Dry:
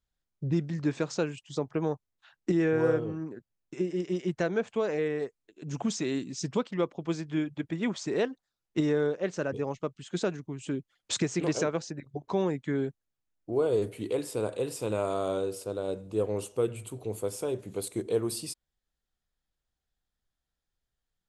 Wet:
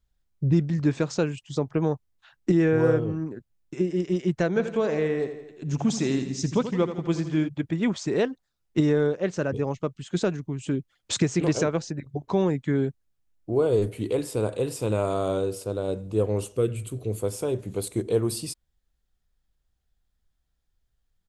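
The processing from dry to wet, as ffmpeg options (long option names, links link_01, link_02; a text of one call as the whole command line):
ffmpeg -i in.wav -filter_complex "[0:a]asplit=3[link_01][link_02][link_03];[link_01]afade=type=out:start_time=4.55:duration=0.02[link_04];[link_02]aecho=1:1:83|166|249|332|415|498|581:0.299|0.17|0.097|0.0553|0.0315|0.018|0.0102,afade=type=in:start_time=4.55:duration=0.02,afade=type=out:start_time=7.47:duration=0.02[link_05];[link_03]afade=type=in:start_time=7.47:duration=0.02[link_06];[link_04][link_05][link_06]amix=inputs=3:normalize=0,asettb=1/sr,asplit=3[link_07][link_08][link_09];[link_07]atrim=end=16.534[link_10];[link_08]atrim=start=16.53:end=17.2,asetpts=PTS-STARTPTS,afade=type=in:duration=0.004:curve=qsin,afade=type=out:start_time=0.666:duration=0.004:curve=qsin,equalizer=frequency=860:width_type=o:width=0.42:gain=-13.5[link_11];[link_09]atrim=start=17.196[link_12];[link_10][link_11]acrossfade=duration=0.004:curve1=hsin:curve2=qsin[link_13];[link_13][link_12]acrossfade=duration=0.004:curve1=qsin:curve2=hsin,lowshelf=frequency=140:gain=11,volume=3dB" out.wav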